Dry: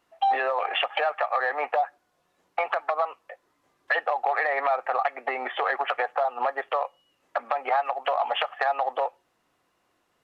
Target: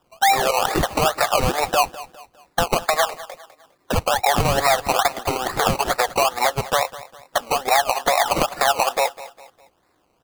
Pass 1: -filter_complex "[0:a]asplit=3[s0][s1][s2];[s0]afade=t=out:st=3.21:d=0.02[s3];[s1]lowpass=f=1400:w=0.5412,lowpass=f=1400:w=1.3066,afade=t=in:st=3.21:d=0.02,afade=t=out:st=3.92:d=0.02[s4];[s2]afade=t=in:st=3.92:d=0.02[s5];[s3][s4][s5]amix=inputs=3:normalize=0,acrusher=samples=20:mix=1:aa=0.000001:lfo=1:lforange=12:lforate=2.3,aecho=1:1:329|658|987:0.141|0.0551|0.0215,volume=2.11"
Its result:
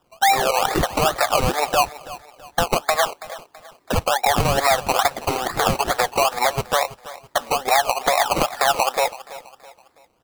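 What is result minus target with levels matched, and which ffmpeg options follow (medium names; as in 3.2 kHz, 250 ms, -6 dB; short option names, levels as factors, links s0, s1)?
echo 126 ms late
-filter_complex "[0:a]asplit=3[s0][s1][s2];[s0]afade=t=out:st=3.21:d=0.02[s3];[s1]lowpass=f=1400:w=0.5412,lowpass=f=1400:w=1.3066,afade=t=in:st=3.21:d=0.02,afade=t=out:st=3.92:d=0.02[s4];[s2]afade=t=in:st=3.92:d=0.02[s5];[s3][s4][s5]amix=inputs=3:normalize=0,acrusher=samples=20:mix=1:aa=0.000001:lfo=1:lforange=12:lforate=2.3,aecho=1:1:203|406|609:0.141|0.0551|0.0215,volume=2.11"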